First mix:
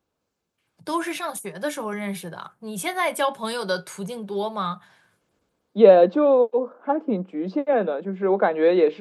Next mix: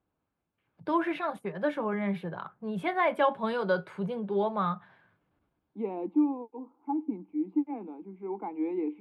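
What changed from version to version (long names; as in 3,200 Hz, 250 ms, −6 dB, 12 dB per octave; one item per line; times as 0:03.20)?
second voice: add formant filter u
master: add high-frequency loss of the air 490 metres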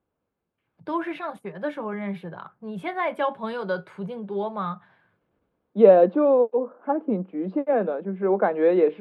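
second voice: remove formant filter u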